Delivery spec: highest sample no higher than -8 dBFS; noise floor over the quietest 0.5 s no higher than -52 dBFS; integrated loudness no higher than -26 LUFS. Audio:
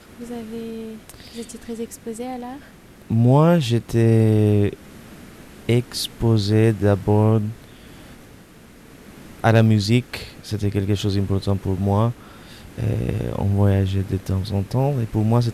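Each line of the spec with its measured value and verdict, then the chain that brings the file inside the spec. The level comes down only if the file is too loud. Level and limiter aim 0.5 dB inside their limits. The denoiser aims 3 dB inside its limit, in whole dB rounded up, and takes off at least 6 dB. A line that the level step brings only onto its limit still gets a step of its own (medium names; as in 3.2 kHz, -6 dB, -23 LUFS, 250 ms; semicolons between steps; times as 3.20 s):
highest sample -3.5 dBFS: fail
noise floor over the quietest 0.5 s -46 dBFS: fail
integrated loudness -20.5 LUFS: fail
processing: noise reduction 6 dB, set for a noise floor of -46 dBFS; trim -6 dB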